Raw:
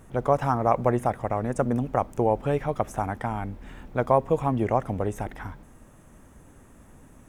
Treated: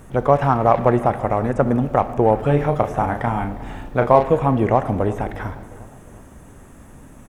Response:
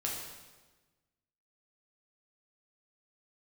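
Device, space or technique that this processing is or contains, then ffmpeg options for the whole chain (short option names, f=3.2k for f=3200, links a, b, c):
saturated reverb return: -filter_complex "[0:a]acrossover=split=3900[a][b];[b]acompressor=threshold=-59dB:ratio=4:attack=1:release=60[c];[a][c]amix=inputs=2:normalize=0,asettb=1/sr,asplit=3[d][e][f];[d]atrim=end=2.384[g];[e]atrim=start=2.38:end=4.3,asetpts=PTS-STARTPTS,afade=t=in:d=0.004:c=qsin,afade=t=out:st=1.916:d=0.004:c=qsin,asplit=2[h][i];[i]adelay=34,volume=-7dB[j];[h][j]amix=inputs=2:normalize=0,atrim=end_sample=84672[k];[f]atrim=start=4.296[l];[g][k]acrossfade=d=0.004:c1=hsin:c2=qsin[m];[m][l]acrossfade=d=0.004:c1=qsin:c2=hsin,asplit=2[n][o];[1:a]atrim=start_sample=2205[p];[o][p]afir=irnorm=-1:irlink=0,asoftclip=type=tanh:threshold=-18.5dB,volume=-10.5dB[q];[n][q]amix=inputs=2:normalize=0,asplit=2[r][s];[s]adelay=356,lowpass=f=2k:p=1,volume=-18.5dB,asplit=2[t][u];[u]adelay=356,lowpass=f=2k:p=1,volume=0.52,asplit=2[v][w];[w]adelay=356,lowpass=f=2k:p=1,volume=0.52,asplit=2[x][y];[y]adelay=356,lowpass=f=2k:p=1,volume=0.52[z];[r][t][v][x][z]amix=inputs=5:normalize=0,volume=5.5dB"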